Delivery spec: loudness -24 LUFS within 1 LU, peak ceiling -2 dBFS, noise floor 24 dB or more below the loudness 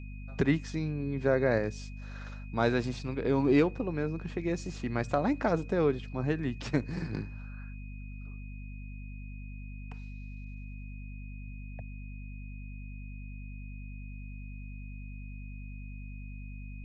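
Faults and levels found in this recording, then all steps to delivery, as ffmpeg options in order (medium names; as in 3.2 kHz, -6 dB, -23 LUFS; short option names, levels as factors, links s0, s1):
hum 50 Hz; highest harmonic 250 Hz; hum level -40 dBFS; steady tone 2.5 kHz; tone level -54 dBFS; loudness -31.0 LUFS; peak level -12.5 dBFS; loudness target -24.0 LUFS
-> -af "bandreject=f=50:t=h:w=4,bandreject=f=100:t=h:w=4,bandreject=f=150:t=h:w=4,bandreject=f=200:t=h:w=4,bandreject=f=250:t=h:w=4"
-af "bandreject=f=2500:w=30"
-af "volume=2.24"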